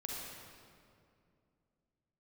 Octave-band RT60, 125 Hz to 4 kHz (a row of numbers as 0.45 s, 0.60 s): 3.3 s, 3.2 s, 2.7 s, 2.2 s, 1.9 s, 1.6 s